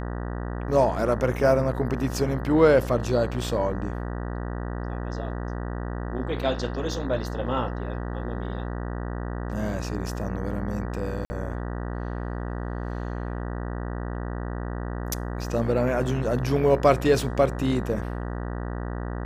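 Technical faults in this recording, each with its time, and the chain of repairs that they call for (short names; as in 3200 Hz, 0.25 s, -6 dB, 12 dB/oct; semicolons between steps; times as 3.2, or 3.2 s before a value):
buzz 60 Hz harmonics 32 -31 dBFS
11.25–11.3 gap 50 ms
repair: de-hum 60 Hz, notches 32; interpolate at 11.25, 50 ms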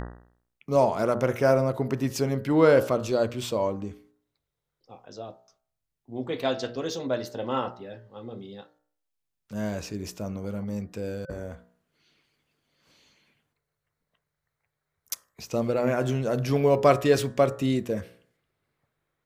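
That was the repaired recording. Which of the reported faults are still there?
none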